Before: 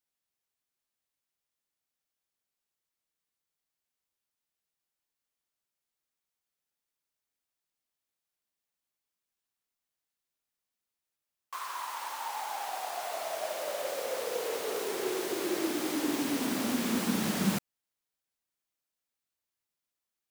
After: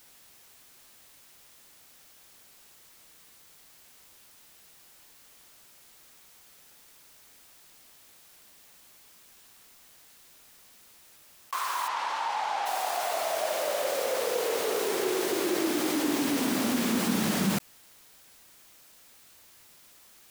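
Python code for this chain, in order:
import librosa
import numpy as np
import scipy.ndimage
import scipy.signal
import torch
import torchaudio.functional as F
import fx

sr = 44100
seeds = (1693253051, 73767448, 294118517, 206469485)

y = fx.lowpass(x, sr, hz=4500.0, slope=12, at=(11.87, 12.65), fade=0.02)
y = fx.env_flatten(y, sr, amount_pct=50)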